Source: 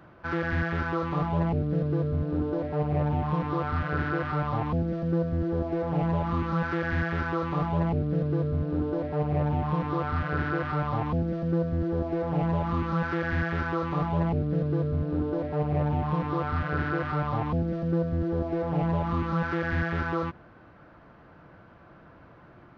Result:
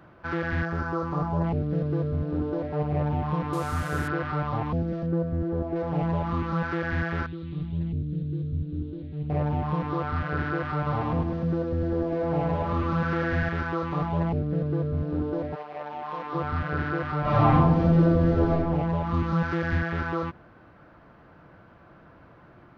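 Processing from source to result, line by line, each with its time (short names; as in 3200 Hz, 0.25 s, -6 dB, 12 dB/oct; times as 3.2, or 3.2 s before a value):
0.65–1.44 band shelf 2700 Hz -10 dB 1.3 oct
3.53–4.08 delta modulation 64 kbps, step -36 dBFS
5.06–5.76 high shelf 2700 Hz -11.5 dB
7.26–9.3 EQ curve 100 Hz 0 dB, 350 Hz -7 dB, 610 Hz -24 dB, 970 Hz -29 dB, 3800 Hz -2 dB, 5400 Hz -21 dB
10.76–13.49 feedback echo 0.104 s, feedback 49%, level -4.5 dB
14.4–14.96 air absorption 76 m
15.54–16.33 HPF 920 Hz -> 440 Hz
17.21–18.51 reverb throw, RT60 1 s, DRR -10 dB
19.13–19.78 tone controls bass +4 dB, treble +4 dB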